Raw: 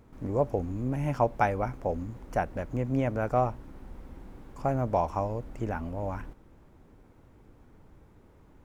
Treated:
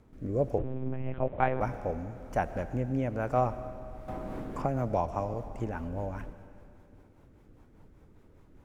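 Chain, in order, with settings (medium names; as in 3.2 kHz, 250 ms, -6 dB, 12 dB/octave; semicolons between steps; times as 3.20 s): wow and flutter 22 cents; rotary cabinet horn 1.1 Hz, later 5 Hz, at 3.68 s; on a send at -12.5 dB: reverberation RT60 2.5 s, pre-delay 60 ms; 0.58–1.61 s: on the sum: monotone LPC vocoder at 8 kHz 130 Hz; 4.08–5.34 s: three bands compressed up and down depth 70%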